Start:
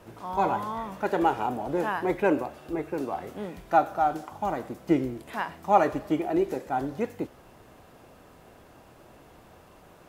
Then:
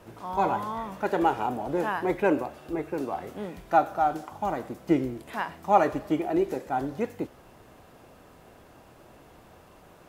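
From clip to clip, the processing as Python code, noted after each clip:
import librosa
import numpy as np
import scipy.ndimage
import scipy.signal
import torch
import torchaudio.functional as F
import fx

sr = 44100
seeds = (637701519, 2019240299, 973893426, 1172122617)

y = x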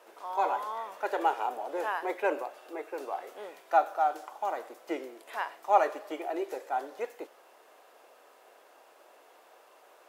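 y = scipy.signal.sosfilt(scipy.signal.butter(4, 440.0, 'highpass', fs=sr, output='sos'), x)
y = y * librosa.db_to_amplitude(-2.5)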